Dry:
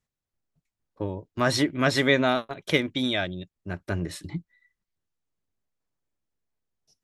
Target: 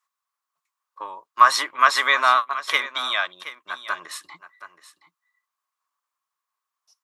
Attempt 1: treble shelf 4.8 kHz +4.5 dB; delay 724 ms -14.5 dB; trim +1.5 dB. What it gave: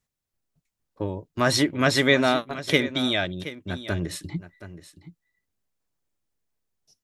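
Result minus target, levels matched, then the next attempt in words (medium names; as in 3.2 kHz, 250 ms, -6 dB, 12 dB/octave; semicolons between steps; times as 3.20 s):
1 kHz band -7.5 dB
resonant high-pass 1.1 kHz, resonance Q 9.4; treble shelf 4.8 kHz +4.5 dB; delay 724 ms -14.5 dB; trim +1.5 dB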